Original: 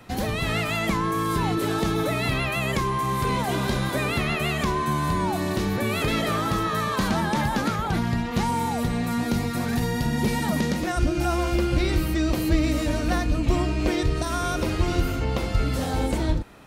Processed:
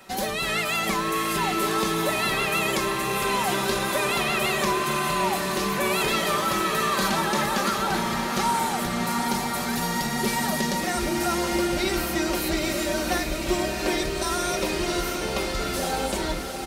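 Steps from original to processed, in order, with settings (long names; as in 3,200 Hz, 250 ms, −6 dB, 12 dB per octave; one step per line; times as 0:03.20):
bass and treble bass −12 dB, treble +5 dB
comb filter 5.2 ms, depth 57%
feedback delay with all-pass diffusion 722 ms, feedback 60%, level −6 dB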